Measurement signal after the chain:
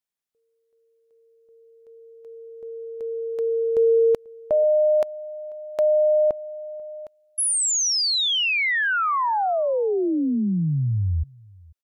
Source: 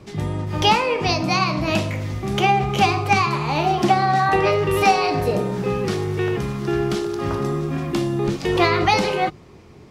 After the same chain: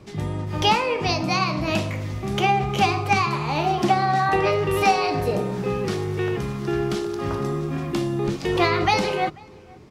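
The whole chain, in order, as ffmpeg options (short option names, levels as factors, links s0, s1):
-filter_complex "[0:a]asplit=2[s0][s1];[s1]adelay=489.8,volume=0.0562,highshelf=f=4000:g=-11[s2];[s0][s2]amix=inputs=2:normalize=0,volume=0.75"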